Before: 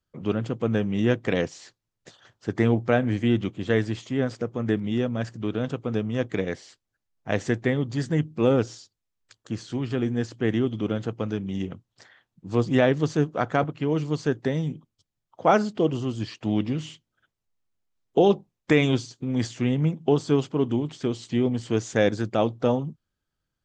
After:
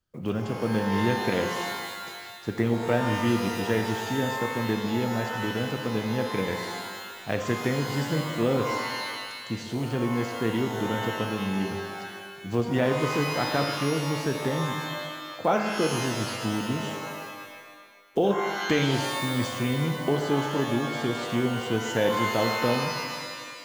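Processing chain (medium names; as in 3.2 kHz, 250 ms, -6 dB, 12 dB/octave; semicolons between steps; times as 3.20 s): block-companded coder 7-bit; compression 1.5:1, threshold -29 dBFS, peak gain reduction 6 dB; pitch-shifted reverb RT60 1.6 s, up +12 st, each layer -2 dB, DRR 5 dB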